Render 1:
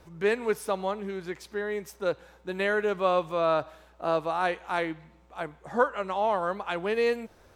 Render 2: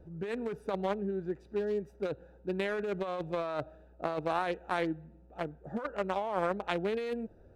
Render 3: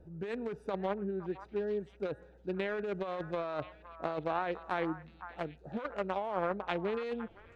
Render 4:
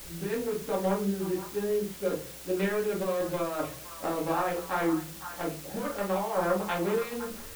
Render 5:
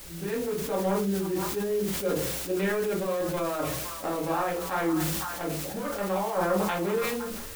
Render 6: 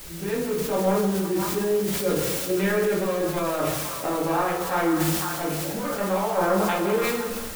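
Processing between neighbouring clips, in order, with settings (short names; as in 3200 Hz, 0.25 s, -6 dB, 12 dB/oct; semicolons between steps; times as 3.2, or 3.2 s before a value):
Wiener smoothing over 41 samples; negative-ratio compressor -31 dBFS, ratio -1; gain -1 dB
treble ducked by the level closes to 3000 Hz, closed at -27 dBFS; delay with a stepping band-pass 0.513 s, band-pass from 1200 Hz, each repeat 1.4 oct, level -8.5 dB; gain -2 dB
shoebox room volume 130 m³, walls furnished, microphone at 2.2 m; in parallel at -5 dB: requantised 6-bit, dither triangular; on the sum: gain -4.5 dB
sustainer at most 27 dB/s
non-linear reverb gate 0.45 s falling, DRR 4 dB; gain +3 dB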